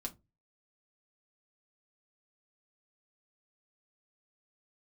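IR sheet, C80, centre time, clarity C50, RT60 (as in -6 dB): 30.0 dB, 9 ms, 20.5 dB, 0.25 s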